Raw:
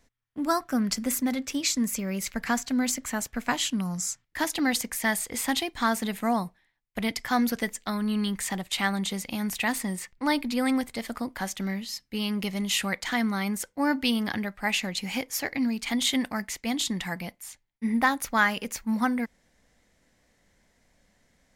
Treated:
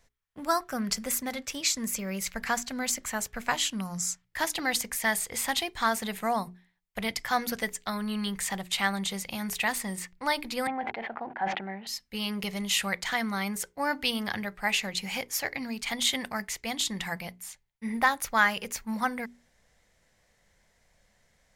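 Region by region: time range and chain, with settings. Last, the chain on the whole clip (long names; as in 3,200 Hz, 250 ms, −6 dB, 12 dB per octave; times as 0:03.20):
0:10.67–0:11.87: slack as between gear wheels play −46.5 dBFS + loudspeaker in its box 270–2,200 Hz, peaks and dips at 350 Hz +3 dB, 510 Hz −5 dB, 800 Hz +9 dB, 1,200 Hz −8 dB, 2,100 Hz −4 dB + level that may fall only so fast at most 54 dB per second
whole clip: parametric band 270 Hz −11 dB 0.63 octaves; mains-hum notches 60/120/180/240/300/360/420 Hz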